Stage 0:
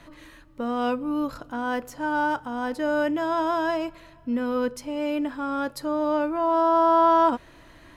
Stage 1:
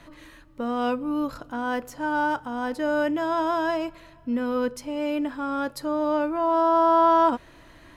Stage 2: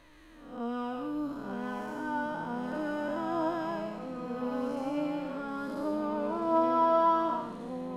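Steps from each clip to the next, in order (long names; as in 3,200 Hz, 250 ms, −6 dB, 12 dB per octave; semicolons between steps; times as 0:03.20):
no processing that can be heard
spectrum smeared in time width 335 ms; flanger 0.32 Hz, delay 1.8 ms, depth 6.1 ms, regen +42%; delay with pitch and tempo change per echo 749 ms, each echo −3 semitones, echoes 3, each echo −6 dB; level −2 dB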